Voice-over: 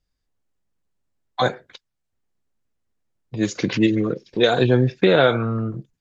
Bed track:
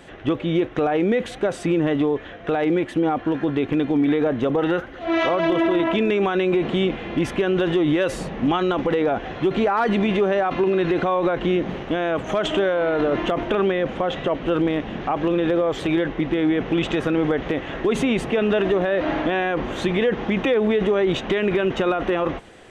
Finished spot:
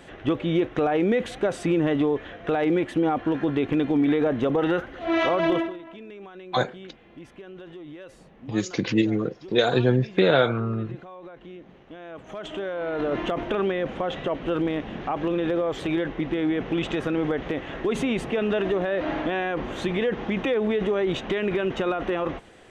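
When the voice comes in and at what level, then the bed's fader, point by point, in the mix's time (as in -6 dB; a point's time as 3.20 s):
5.15 s, -3.5 dB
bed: 5.56 s -2 dB
5.80 s -22 dB
11.74 s -22 dB
13.14 s -4.5 dB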